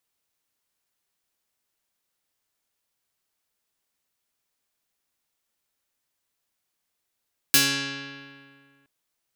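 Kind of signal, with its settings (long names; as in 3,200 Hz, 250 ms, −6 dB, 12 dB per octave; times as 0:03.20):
Karplus-Strong string C#3, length 1.32 s, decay 2.05 s, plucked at 0.22, medium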